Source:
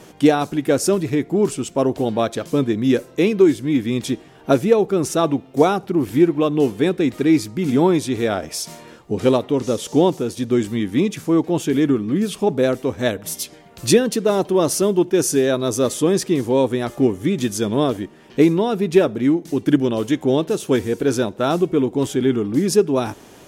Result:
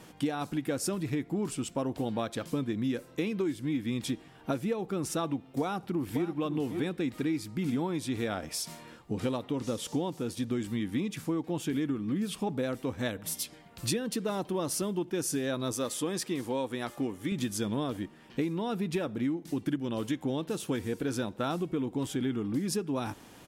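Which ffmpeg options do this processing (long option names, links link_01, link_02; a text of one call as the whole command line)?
ffmpeg -i in.wav -filter_complex "[0:a]asplit=2[link_01][link_02];[link_02]afade=type=in:start_time=5.6:duration=0.01,afade=type=out:start_time=6.33:duration=0.01,aecho=0:1:550|1100|1650:0.266073|0.0665181|0.0166295[link_03];[link_01][link_03]amix=inputs=2:normalize=0,asettb=1/sr,asplit=3[link_04][link_05][link_06];[link_04]atrim=end=15.724[link_07];[link_05]atrim=start=15.72:end=17.32,asetpts=PTS-STARTPTS,afade=type=in:duration=0.004:curve=qsin,afade=type=out:start_time=1.596:duration=0.004:curve=qsin,lowshelf=frequency=220:gain=-10.5[link_08];[link_06]atrim=start=17.316[link_09];[link_07][link_08]acrossfade=duration=0.004:curve1=hsin:curve2=qsin[link_10];[link_10][link_09]acrossfade=duration=0.004:curve1=qsin:curve2=hsin,equalizer=frequency=400:width_type=o:width=0.33:gain=-8,equalizer=frequency=630:width_type=o:width=0.33:gain=-5,equalizer=frequency=6300:width_type=o:width=0.33:gain=-4,acompressor=threshold=-21dB:ratio=6,volume=-6.5dB" out.wav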